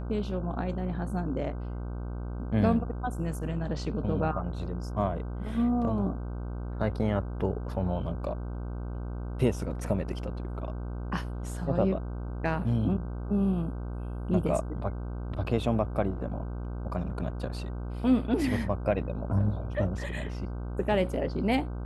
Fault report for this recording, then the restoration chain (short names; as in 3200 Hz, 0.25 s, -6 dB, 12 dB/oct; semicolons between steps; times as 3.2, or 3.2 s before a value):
buzz 60 Hz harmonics 26 -35 dBFS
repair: de-hum 60 Hz, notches 26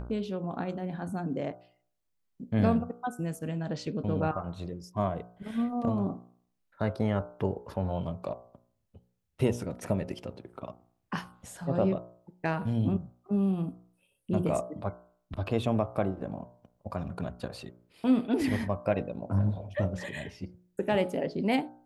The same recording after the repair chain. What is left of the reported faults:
none